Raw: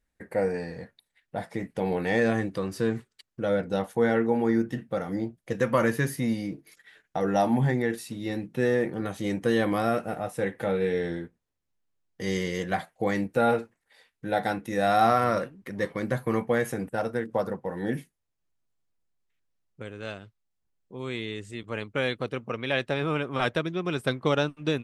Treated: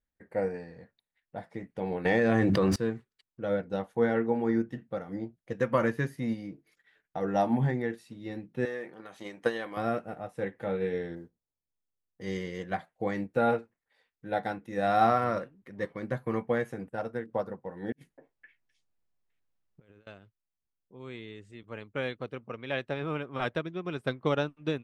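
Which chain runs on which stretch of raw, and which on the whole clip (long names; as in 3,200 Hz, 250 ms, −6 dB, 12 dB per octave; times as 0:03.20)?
0:02.05–0:02.76: running median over 3 samples + mains-hum notches 50/100/150/200/250 Hz + envelope flattener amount 100%
0:08.65–0:09.77: transient designer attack +10 dB, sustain +5 dB + high-pass filter 900 Hz 6 dB per octave
0:11.15–0:12.21: low-pass filter 1,100 Hz + noise that follows the level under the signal 32 dB
0:17.92–0:20.07: echo through a band-pass that steps 257 ms, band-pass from 740 Hz, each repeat 1.4 octaves, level −4 dB + compressor whose output falls as the input rises −46 dBFS, ratio −0.5
whole clip: low-pass filter 3,000 Hz 6 dB per octave; expander for the loud parts 1.5 to 1, over −36 dBFS; level −1 dB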